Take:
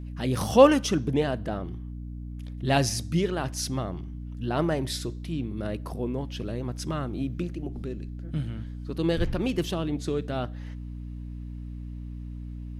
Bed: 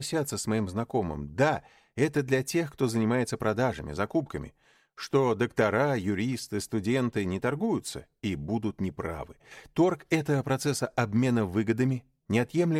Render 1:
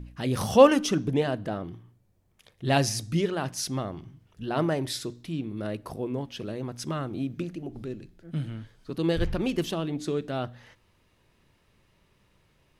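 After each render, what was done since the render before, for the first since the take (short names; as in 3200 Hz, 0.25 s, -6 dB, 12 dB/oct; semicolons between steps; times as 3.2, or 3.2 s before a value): de-hum 60 Hz, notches 5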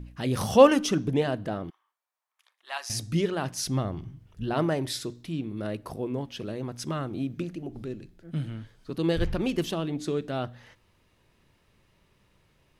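1.7–2.9 ladder high-pass 880 Hz, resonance 45%; 3.66–4.54 low shelf 130 Hz +10.5 dB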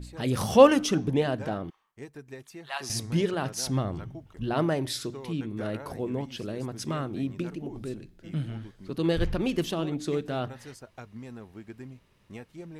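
add bed -17.5 dB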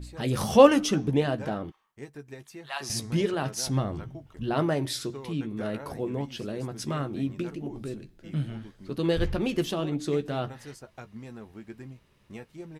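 doubler 14 ms -10 dB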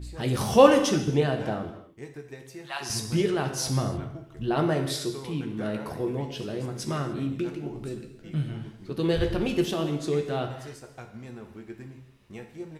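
non-linear reverb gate 0.32 s falling, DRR 5 dB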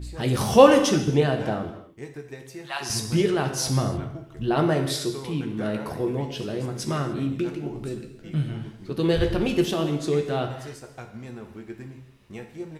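gain +3 dB; limiter -1 dBFS, peak gain reduction 2 dB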